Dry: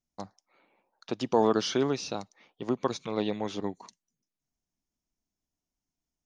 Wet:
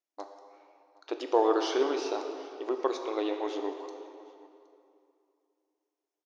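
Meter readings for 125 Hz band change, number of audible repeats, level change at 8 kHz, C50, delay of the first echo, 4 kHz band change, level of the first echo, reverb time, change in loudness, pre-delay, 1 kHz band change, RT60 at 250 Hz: under -35 dB, 1, -6.0 dB, 6.0 dB, 0.768 s, -3.0 dB, -23.0 dB, 2.7 s, -0.5 dB, 9 ms, +1.0 dB, 2.7 s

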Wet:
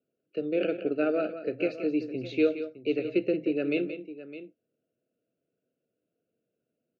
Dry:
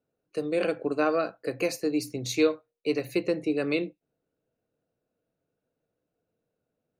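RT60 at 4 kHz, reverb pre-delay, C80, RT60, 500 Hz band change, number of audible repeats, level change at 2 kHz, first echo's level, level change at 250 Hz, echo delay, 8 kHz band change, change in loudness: none, none, none, none, -0.5 dB, 2, -3.0 dB, -11.0 dB, +0.5 dB, 0.176 s, under -25 dB, -1.0 dB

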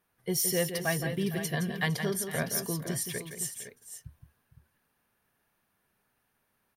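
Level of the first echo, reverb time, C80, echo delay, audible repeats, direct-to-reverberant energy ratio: -8.0 dB, none, none, 0.168 s, 3, none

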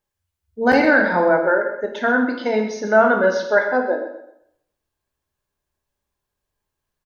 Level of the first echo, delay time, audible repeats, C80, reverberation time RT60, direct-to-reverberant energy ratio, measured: -12.0 dB, 0.128 s, 2, 8.0 dB, 0.75 s, 2.5 dB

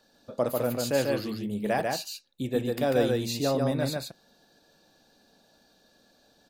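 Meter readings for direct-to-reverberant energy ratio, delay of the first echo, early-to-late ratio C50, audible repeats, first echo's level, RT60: none, 0.144 s, none, 1, -3.0 dB, none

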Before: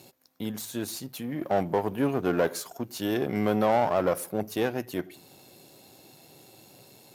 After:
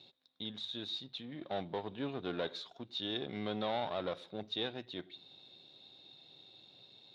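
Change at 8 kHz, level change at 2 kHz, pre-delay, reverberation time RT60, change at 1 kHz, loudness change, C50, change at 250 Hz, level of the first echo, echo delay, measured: under -25 dB, -11.0 dB, none, none, -13.0 dB, -11.5 dB, none, -13.0 dB, none, none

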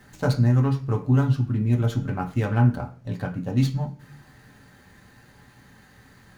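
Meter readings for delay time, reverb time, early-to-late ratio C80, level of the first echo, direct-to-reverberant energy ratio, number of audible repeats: none, 0.45 s, 18.5 dB, none, 2.0 dB, none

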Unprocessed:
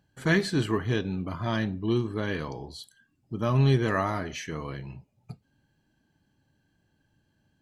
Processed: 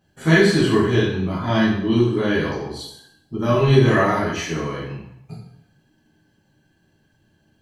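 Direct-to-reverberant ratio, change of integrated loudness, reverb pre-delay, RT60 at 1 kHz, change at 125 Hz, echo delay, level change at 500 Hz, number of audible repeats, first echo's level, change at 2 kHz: -8.5 dB, +9.0 dB, 4 ms, 0.80 s, +7.0 dB, none, +11.0 dB, none, none, +9.5 dB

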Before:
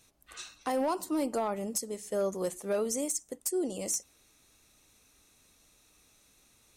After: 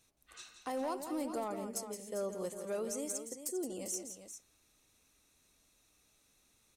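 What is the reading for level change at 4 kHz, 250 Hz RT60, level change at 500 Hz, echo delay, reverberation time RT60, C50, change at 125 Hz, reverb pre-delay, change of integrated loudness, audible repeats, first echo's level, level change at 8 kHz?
-6.5 dB, none, -6.5 dB, 0.169 s, none, none, -7.0 dB, none, -7.0 dB, 2, -9.0 dB, -6.5 dB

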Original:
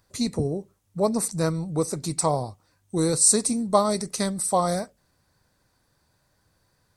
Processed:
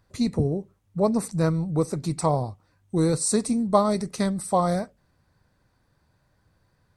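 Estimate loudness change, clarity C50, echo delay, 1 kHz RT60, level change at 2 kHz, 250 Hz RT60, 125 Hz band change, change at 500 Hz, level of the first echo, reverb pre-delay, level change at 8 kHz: -1.0 dB, none, none, none, -0.5 dB, none, +3.5 dB, +0.5 dB, none, none, -8.5 dB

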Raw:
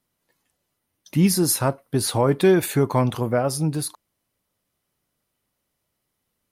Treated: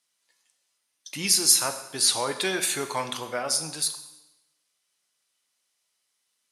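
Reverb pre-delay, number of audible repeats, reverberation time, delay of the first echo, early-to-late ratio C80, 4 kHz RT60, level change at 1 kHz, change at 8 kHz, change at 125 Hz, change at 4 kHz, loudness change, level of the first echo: 6 ms, none, 1.0 s, none, 12.0 dB, 0.95 s, -4.5 dB, +5.0 dB, -20.5 dB, +6.5 dB, -2.5 dB, none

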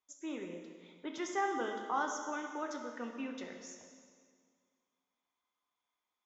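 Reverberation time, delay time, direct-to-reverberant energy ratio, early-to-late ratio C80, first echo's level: 1.9 s, none, 2.5 dB, 6.0 dB, none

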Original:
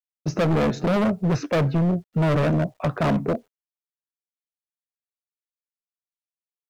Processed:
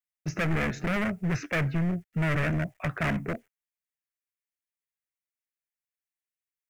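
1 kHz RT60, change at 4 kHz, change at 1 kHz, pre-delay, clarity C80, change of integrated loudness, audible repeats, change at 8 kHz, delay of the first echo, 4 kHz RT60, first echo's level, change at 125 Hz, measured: none, -5.0 dB, -7.5 dB, none, none, -6.5 dB, none, n/a, none, none, none, -6.0 dB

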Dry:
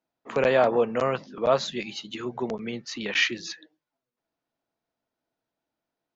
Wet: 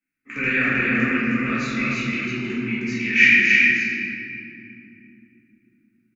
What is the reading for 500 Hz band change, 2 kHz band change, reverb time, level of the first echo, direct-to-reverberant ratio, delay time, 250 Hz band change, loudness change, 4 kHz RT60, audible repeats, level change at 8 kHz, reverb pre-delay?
-9.5 dB, +15.0 dB, 2.6 s, -2.5 dB, -11.5 dB, 0.313 s, +10.0 dB, +7.5 dB, 1.5 s, 1, n/a, 4 ms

